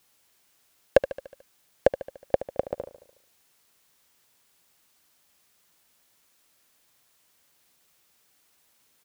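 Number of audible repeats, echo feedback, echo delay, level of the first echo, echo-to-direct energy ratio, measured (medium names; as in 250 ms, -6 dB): 5, 56%, 73 ms, -14.0 dB, -12.5 dB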